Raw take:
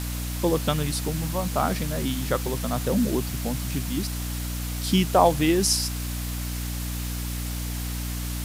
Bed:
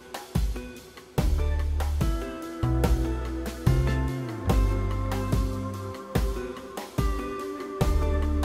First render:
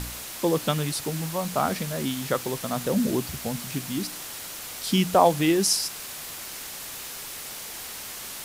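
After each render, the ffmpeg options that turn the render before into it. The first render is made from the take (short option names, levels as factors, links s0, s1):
-af "bandreject=f=60:t=h:w=4,bandreject=f=120:t=h:w=4,bandreject=f=180:t=h:w=4,bandreject=f=240:t=h:w=4,bandreject=f=300:t=h:w=4"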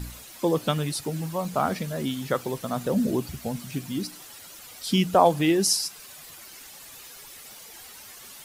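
-af "afftdn=nr=11:nf=-38"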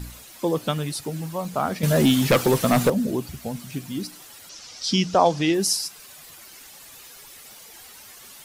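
-filter_complex "[0:a]asettb=1/sr,asplit=3[s0][s1][s2];[s0]atrim=end=1.834[s3];[s1]atrim=start=1.83:end=2.9,asetpts=PTS-STARTPTS,afade=t=in:d=0.004:c=qsin,afade=t=out:st=1.066:d=0.004:c=qsin,aeval=exprs='0.266*sin(PI/2*2.82*val(0)/0.266)':c=same[s4];[s2]atrim=start=2.896[s5];[s3][s4]acrossfade=d=0.004:c1=hsin:c2=qsin[s6];[s6][s5]acrossfade=d=0.004:c1=qsin:c2=hsin,asettb=1/sr,asplit=3[s7][s8][s9];[s7]atrim=end=4.494[s10];[s8]atrim=start=4.49:end=5.54,asetpts=PTS-STARTPTS,afade=t=in:d=0.004:c=qsin,afade=t=out:st=1.046:d=0.004:c=qsin,lowpass=f=5600:t=q:w=3.6[s11];[s9]atrim=start=5.536[s12];[s10][s11]acrossfade=d=0.004:c1=hsin:c2=qsin[s13];[s13][s12]acrossfade=d=0.004:c1=qsin:c2=hsin"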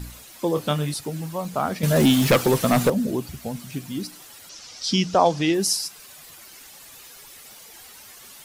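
-filter_complex "[0:a]asettb=1/sr,asplit=3[s0][s1][s2];[s0]atrim=end=0.534[s3];[s1]atrim=start=0.53:end=0.94,asetpts=PTS-STARTPTS,afade=t=in:d=0.004:c=qsin,afade=t=out:st=0.406:d=0.004:c=qsin,asplit=2[s4][s5];[s5]adelay=27,volume=0.447[s6];[s4][s6]amix=inputs=2:normalize=0,atrim=end_sample=18081[s7];[s2]atrim=start=0.936[s8];[s3][s7]acrossfade=d=0.004:c1=hsin:c2=qsin[s9];[s9][s8]acrossfade=d=0.004:c1=qsin:c2=hsin,asettb=1/sr,asplit=3[s10][s11][s12];[s10]atrim=end=1.964[s13];[s11]atrim=start=1.96:end=2.36,asetpts=PTS-STARTPTS,afade=t=in:d=0.004:c=qsin,afade=t=out:st=0.396:d=0.004:c=qsin,aeval=exprs='val(0)+0.5*0.0422*sgn(val(0))':c=same[s14];[s12]atrim=start=2.356[s15];[s13][s14]acrossfade=d=0.004:c1=hsin:c2=qsin[s16];[s16][s15]acrossfade=d=0.004:c1=qsin:c2=hsin"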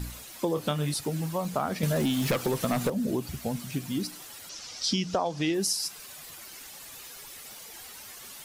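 -af "acompressor=threshold=0.0631:ratio=10"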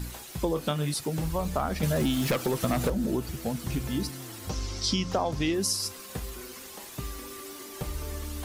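-filter_complex "[1:a]volume=0.282[s0];[0:a][s0]amix=inputs=2:normalize=0"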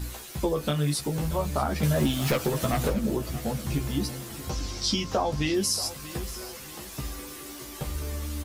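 -filter_complex "[0:a]asplit=2[s0][s1];[s1]adelay=14,volume=0.631[s2];[s0][s2]amix=inputs=2:normalize=0,aecho=1:1:632|1264|1896|2528:0.168|0.0705|0.0296|0.0124"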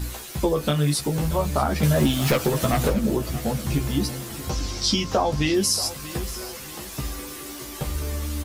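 -af "volume=1.68"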